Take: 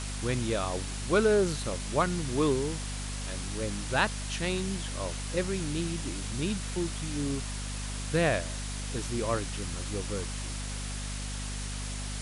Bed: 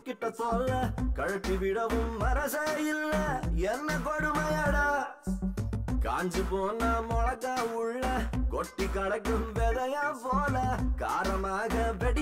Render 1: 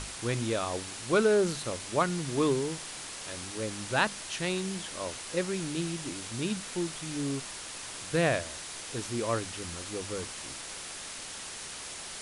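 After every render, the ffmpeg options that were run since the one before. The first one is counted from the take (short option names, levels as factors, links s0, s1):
-af "bandreject=f=50:t=h:w=6,bandreject=f=100:t=h:w=6,bandreject=f=150:t=h:w=6,bandreject=f=200:t=h:w=6,bandreject=f=250:t=h:w=6"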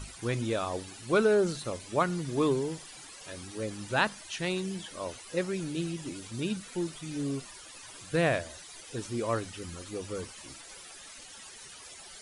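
-af "afftdn=nr=14:nf=-42"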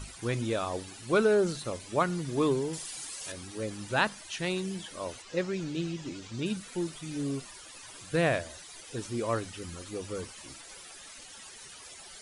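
-filter_complex "[0:a]asettb=1/sr,asplit=3[s0][s1][s2];[s0]atrim=end=2.734[s3];[s1]atrim=start=2.73:end=3.32,asetpts=PTS-STARTPTS,afade=t=in:d=0.004:c=qsin,afade=t=out:st=0.586:d=0.004:c=qsin,highshelf=f=4100:g=11[s4];[s2]atrim=start=3.316[s5];[s3][s4]acrossfade=d=0.004:c1=hsin:c2=qsin[s6];[s6][s5]acrossfade=d=0.004:c1=qsin:c2=hsin,asettb=1/sr,asplit=3[s7][s8][s9];[s7]atrim=end=5.224[s10];[s8]atrim=start=5.22:end=6.46,asetpts=PTS-STARTPTS,afade=t=in:d=0.004:c=qsin,afade=t=out:st=1.236:d=0.004:c=qsin,lowpass=f=7000:w=0.5412,lowpass=f=7000:w=1.3066[s11];[s9]atrim=start=6.456[s12];[s10][s11]acrossfade=d=0.004:c1=hsin:c2=qsin[s13];[s13][s12]acrossfade=d=0.004:c1=qsin:c2=hsin"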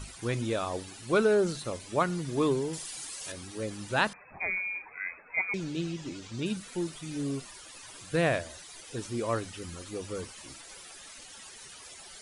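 -filter_complex "[0:a]asettb=1/sr,asplit=3[s0][s1][s2];[s0]atrim=end=4.134[s3];[s1]atrim=start=4.13:end=5.54,asetpts=PTS-STARTPTS,afade=t=in:d=0.004:c=qsin,afade=t=out:st=1.406:d=0.004:c=qsin,lowpass=f=2200:t=q:w=0.5098,lowpass=f=2200:t=q:w=0.6013,lowpass=f=2200:t=q:w=0.9,lowpass=f=2200:t=q:w=2.563,afreqshift=-2600[s4];[s2]atrim=start=5.536[s5];[s3][s4]acrossfade=d=0.004:c1=hsin:c2=qsin[s6];[s6][s5]acrossfade=d=0.004:c1=qsin:c2=hsin"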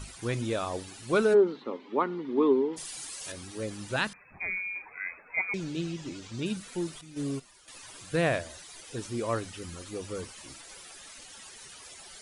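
-filter_complex "[0:a]asplit=3[s0][s1][s2];[s0]afade=t=out:st=1.33:d=0.02[s3];[s1]highpass=f=240:w=0.5412,highpass=f=240:w=1.3066,equalizer=f=250:t=q:w=4:g=9,equalizer=f=410:t=q:w=4:g=6,equalizer=f=640:t=q:w=4:g=-9,equalizer=f=920:t=q:w=4:g=5,equalizer=f=1600:t=q:w=4:g=-7,equalizer=f=2600:t=q:w=4:g=-7,lowpass=f=3000:w=0.5412,lowpass=f=3000:w=1.3066,afade=t=in:st=1.33:d=0.02,afade=t=out:st=2.76:d=0.02[s4];[s2]afade=t=in:st=2.76:d=0.02[s5];[s3][s4][s5]amix=inputs=3:normalize=0,asettb=1/sr,asplit=3[s6][s7][s8];[s6]atrim=end=3.964[s9];[s7]atrim=start=3.96:end=4.76,asetpts=PTS-STARTPTS,afade=t=in:d=0.004:c=qsin,afade=t=out:st=0.796:d=0.004:c=qsin,equalizer=f=680:w=0.84:g=-8.5[s10];[s8]atrim=start=4.756[s11];[s9][s10]acrossfade=d=0.004:c1=hsin:c2=qsin[s12];[s12][s11]acrossfade=d=0.004:c1=qsin:c2=hsin,asettb=1/sr,asplit=3[s13][s14][s15];[s13]atrim=end=7.014[s16];[s14]atrim=start=7.01:end=7.68,asetpts=PTS-STARTPTS,afade=t=in:d=0.004:c=qsin,afade=t=out:st=0.666:d=0.004:c=qsin,agate=range=0.316:threshold=0.0158:ratio=16:release=100:detection=peak[s17];[s15]atrim=start=7.676[s18];[s16][s17]acrossfade=d=0.004:c1=hsin:c2=qsin[s19];[s19][s18]acrossfade=d=0.004:c1=qsin:c2=hsin"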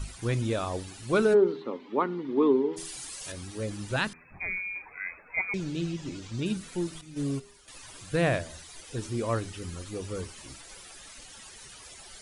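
-af "lowshelf=f=130:g=9.5,bandreject=f=81.1:t=h:w=4,bandreject=f=162.2:t=h:w=4,bandreject=f=243.3:t=h:w=4,bandreject=f=324.4:t=h:w=4,bandreject=f=405.5:t=h:w=4"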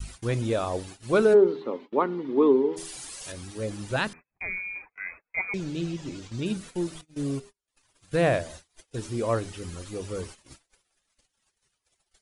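-af "agate=range=0.0158:threshold=0.00708:ratio=16:detection=peak,adynamicequalizer=threshold=0.0141:dfrequency=570:dqfactor=0.96:tfrequency=570:tqfactor=0.96:attack=5:release=100:ratio=0.375:range=2.5:mode=boostabove:tftype=bell"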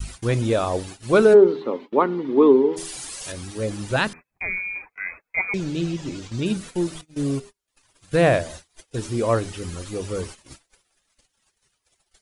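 -af "volume=1.88"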